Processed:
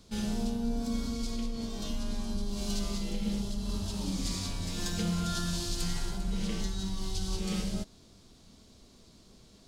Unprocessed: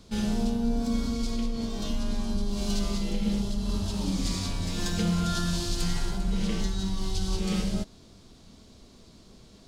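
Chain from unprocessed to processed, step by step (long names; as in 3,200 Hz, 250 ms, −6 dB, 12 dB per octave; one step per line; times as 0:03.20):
high-shelf EQ 4,900 Hz +5 dB
level −5 dB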